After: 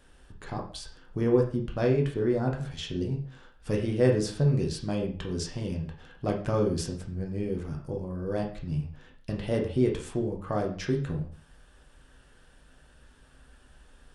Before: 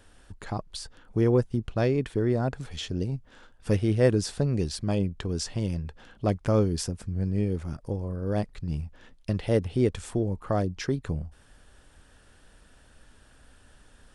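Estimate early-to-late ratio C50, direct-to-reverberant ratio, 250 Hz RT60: 8.0 dB, 0.0 dB, 0.45 s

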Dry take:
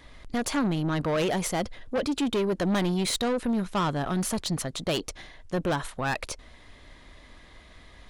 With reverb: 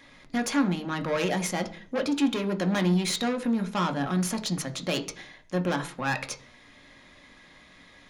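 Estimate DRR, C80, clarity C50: 5.5 dB, 20.5 dB, 15.5 dB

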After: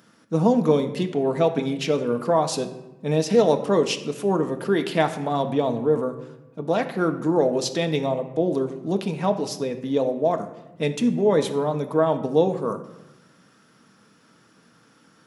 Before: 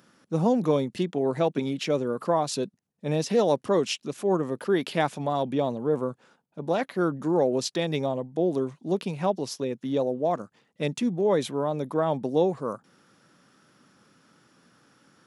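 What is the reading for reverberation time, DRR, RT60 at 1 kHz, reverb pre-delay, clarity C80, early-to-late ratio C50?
1.0 s, 5.0 dB, 0.95 s, 4 ms, 13.5 dB, 11.5 dB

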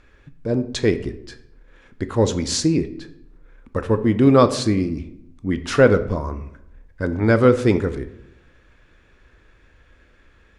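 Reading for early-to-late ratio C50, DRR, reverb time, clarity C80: 13.5 dB, 10.0 dB, 0.80 s, 16.0 dB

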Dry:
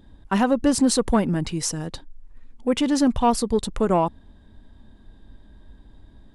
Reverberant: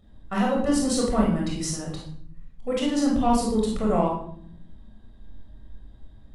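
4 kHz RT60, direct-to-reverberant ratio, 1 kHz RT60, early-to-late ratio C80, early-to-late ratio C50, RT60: 0.45 s, -2.5 dB, 0.55 s, 8.0 dB, 3.0 dB, 0.60 s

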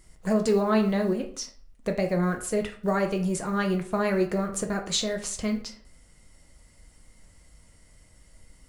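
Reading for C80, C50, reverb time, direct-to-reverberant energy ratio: 15.0 dB, 11.0 dB, 0.50 s, 3.5 dB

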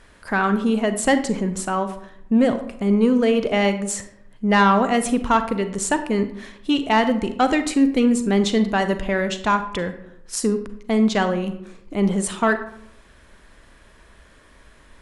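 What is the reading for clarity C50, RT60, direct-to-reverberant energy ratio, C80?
11.0 dB, 0.75 s, 9.5 dB, 14.0 dB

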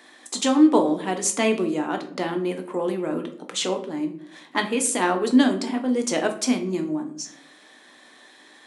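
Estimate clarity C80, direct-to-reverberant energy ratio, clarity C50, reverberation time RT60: 15.5 dB, 4.5 dB, 11.5 dB, 0.65 s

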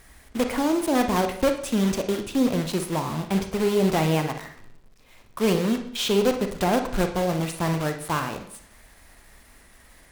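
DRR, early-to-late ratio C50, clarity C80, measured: 6.0 dB, 8.0 dB, 12.5 dB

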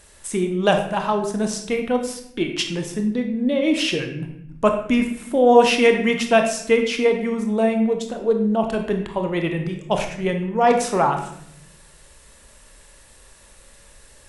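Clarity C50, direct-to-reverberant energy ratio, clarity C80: 7.0 dB, 4.0 dB, 9.5 dB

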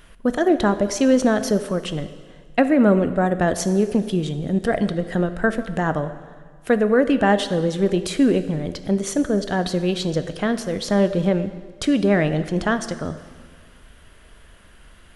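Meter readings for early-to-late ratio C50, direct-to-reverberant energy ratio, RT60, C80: 12.0 dB, 10.5 dB, 1.7 s, 13.0 dB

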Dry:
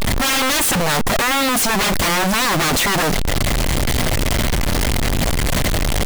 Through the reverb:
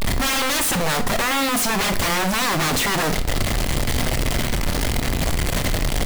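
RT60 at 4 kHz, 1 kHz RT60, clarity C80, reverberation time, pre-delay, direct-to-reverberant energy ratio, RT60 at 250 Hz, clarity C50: 0.40 s, 0.55 s, 17.0 dB, 0.55 s, 23 ms, 9.5 dB, 0.55 s, 12.5 dB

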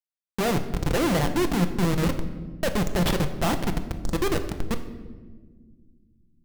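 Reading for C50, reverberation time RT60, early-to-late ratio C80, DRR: 11.0 dB, 1.6 s, 12.5 dB, 6.5 dB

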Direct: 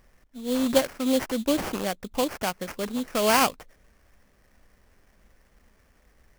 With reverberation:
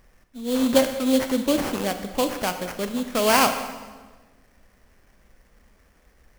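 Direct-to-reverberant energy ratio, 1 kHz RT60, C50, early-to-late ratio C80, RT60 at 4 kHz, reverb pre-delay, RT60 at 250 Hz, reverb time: 7.5 dB, 1.3 s, 9.0 dB, 10.5 dB, 1.1 s, 27 ms, 1.7 s, 1.4 s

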